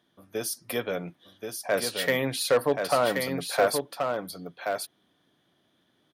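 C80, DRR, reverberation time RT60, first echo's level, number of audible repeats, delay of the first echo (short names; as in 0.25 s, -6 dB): none, none, none, -5.0 dB, 1, 1.079 s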